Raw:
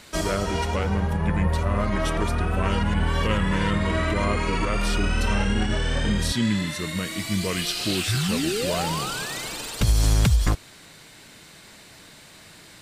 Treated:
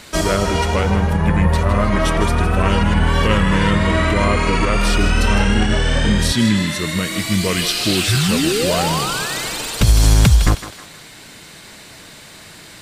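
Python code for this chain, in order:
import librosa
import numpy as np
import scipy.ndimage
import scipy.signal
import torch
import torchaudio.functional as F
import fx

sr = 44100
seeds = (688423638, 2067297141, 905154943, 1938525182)

y = fx.echo_thinned(x, sr, ms=158, feedback_pct=44, hz=420.0, wet_db=-10.0)
y = F.gain(torch.from_numpy(y), 7.5).numpy()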